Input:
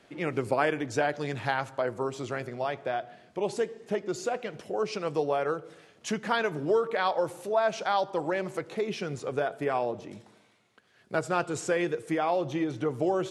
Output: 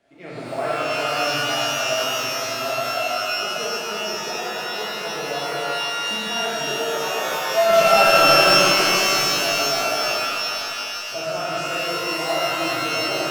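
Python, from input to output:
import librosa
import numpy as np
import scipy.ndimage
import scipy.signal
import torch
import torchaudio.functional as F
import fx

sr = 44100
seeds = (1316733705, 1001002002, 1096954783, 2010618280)

y = fx.leveller(x, sr, passes=5, at=(7.69, 8.58))
y = fx.peak_eq(y, sr, hz=660.0, db=13.5, octaves=0.21)
y = fx.rev_shimmer(y, sr, seeds[0], rt60_s=3.4, semitones=12, shimmer_db=-2, drr_db=-9.0)
y = F.gain(torch.from_numpy(y), -11.0).numpy()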